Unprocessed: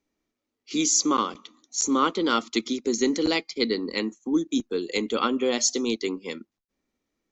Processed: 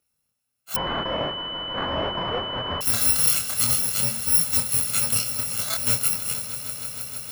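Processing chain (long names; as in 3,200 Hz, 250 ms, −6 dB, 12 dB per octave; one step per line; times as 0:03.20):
samples in bit-reversed order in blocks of 128 samples
high-pass filter 77 Hz
hum removal 216.8 Hz, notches 37
0:05.21–0:05.87: compressor whose output falls as the input rises −36 dBFS, ratio −1
brickwall limiter −16 dBFS, peak gain reduction 7.5 dB
chorus effect 0.47 Hz, depth 4.6 ms
echo that builds up and dies away 157 ms, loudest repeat 5, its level −16.5 dB
0:00.76–0:02.81: switching amplifier with a slow clock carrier 3,000 Hz
level +8.5 dB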